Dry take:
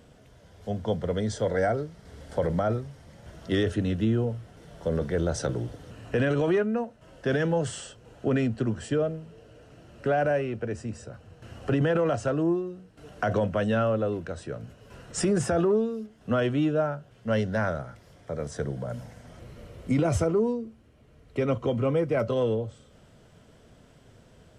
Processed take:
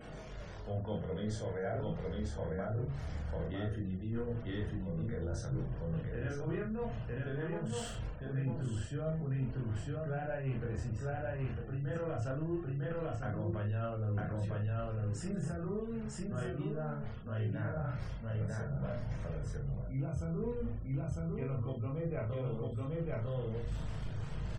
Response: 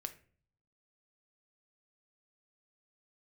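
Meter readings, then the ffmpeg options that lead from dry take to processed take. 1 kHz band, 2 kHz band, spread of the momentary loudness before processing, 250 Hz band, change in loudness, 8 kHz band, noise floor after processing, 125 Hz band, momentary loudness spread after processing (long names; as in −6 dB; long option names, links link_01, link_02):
−12.0 dB, −12.0 dB, 16 LU, −11.0 dB, −10.5 dB, −12.5 dB, −43 dBFS, −4.0 dB, 4 LU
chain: -filter_complex "[0:a]aeval=exprs='val(0)+0.5*0.0126*sgn(val(0))':channel_layout=same,bandreject=frequency=60:width_type=h:width=6,bandreject=frequency=120:width_type=h:width=6,bandreject=frequency=180:width_type=h:width=6,bandreject=frequency=240:width_type=h:width=6,bandreject=frequency=300:width_type=h:width=6,bandreject=frequency=360:width_type=h:width=6,flanger=delay=20:depth=7.4:speed=0.21,asubboost=boost=4.5:cutoff=150,asplit=2[link_01][link_02];[link_02]aecho=0:1:951:0.668[link_03];[link_01][link_03]amix=inputs=2:normalize=0[link_04];[1:a]atrim=start_sample=2205,atrim=end_sample=4410[link_05];[link_04][link_05]afir=irnorm=-1:irlink=0,areverse,acompressor=threshold=-34dB:ratio=20,areverse,asplit=2[link_06][link_07];[link_07]adelay=38,volume=-5dB[link_08];[link_06][link_08]amix=inputs=2:normalize=0,afftfilt=real='re*gte(hypot(re,im),0.00224)':imag='im*gte(hypot(re,im),0.00224)':win_size=1024:overlap=0.75,adynamicequalizer=threshold=0.001:dfrequency=2500:dqfactor=0.7:tfrequency=2500:tqfactor=0.7:attack=5:release=100:ratio=0.375:range=2:mode=cutabove:tftype=highshelf"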